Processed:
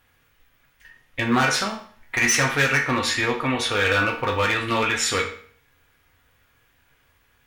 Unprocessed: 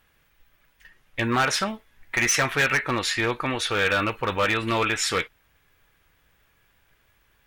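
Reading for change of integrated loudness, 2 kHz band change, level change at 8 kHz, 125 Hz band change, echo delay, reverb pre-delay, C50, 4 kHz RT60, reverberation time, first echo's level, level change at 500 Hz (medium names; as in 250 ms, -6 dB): +2.0 dB, +2.5 dB, +2.5 dB, +3.0 dB, no echo, 4 ms, 8.5 dB, 0.45 s, 0.50 s, no echo, +1.5 dB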